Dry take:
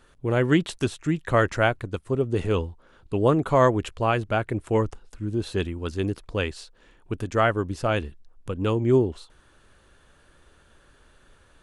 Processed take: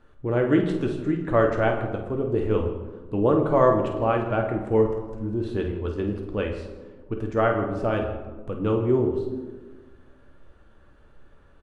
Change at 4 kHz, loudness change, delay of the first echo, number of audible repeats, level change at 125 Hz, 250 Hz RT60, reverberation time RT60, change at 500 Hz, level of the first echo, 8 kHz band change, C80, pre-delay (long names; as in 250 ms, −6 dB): −8.5 dB, +0.5 dB, 50 ms, 2, −2.0 dB, 1.8 s, 1.4 s, +2.0 dB, −9.5 dB, below −15 dB, 8.5 dB, 3 ms